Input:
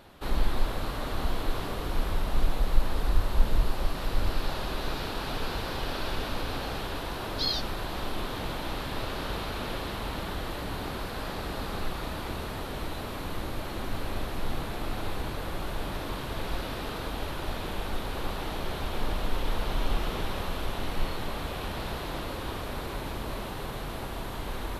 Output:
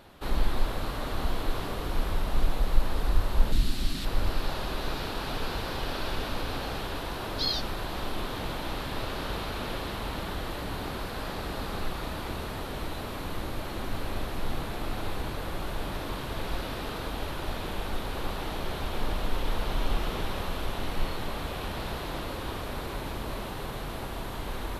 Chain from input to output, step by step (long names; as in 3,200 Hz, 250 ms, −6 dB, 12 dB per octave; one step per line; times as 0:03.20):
0:03.52–0:04.05: octave-band graphic EQ 250/500/1,000/4,000/8,000 Hz +8/−11/−8/+6/+6 dB